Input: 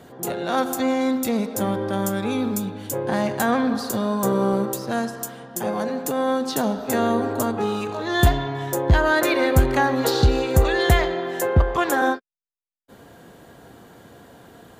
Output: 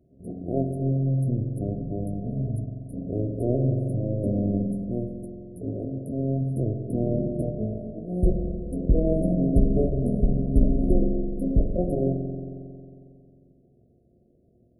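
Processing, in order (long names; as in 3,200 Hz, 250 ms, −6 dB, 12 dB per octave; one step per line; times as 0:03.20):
mains-hum notches 60/120/180 Hz
power curve on the samples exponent 1.4
pitch shifter −11.5 semitones
linear-phase brick-wall band-stop 720–9,000 Hz
spring reverb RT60 2.5 s, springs 45 ms, chirp 50 ms, DRR 4 dB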